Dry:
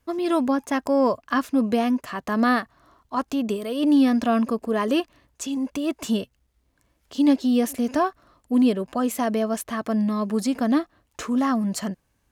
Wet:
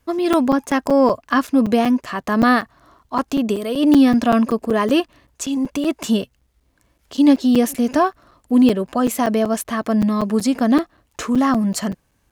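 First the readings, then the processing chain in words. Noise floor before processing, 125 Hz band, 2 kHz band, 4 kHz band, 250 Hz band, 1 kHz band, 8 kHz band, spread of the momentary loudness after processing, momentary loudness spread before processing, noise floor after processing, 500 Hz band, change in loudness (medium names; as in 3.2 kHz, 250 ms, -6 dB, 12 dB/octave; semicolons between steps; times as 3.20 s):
-70 dBFS, no reading, +5.5 dB, +5.5 dB, +5.5 dB, +5.5 dB, +5.5 dB, 10 LU, 10 LU, -64 dBFS, +5.5 dB, +5.5 dB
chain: crackling interface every 0.19 s, samples 256, zero, from 0.33 s; trim +5.5 dB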